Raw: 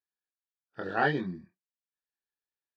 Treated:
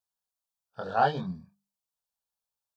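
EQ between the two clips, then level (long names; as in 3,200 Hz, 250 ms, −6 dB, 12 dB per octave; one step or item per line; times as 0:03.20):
mains-hum notches 50/100/150/200 Hz
phaser with its sweep stopped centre 810 Hz, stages 4
+6.0 dB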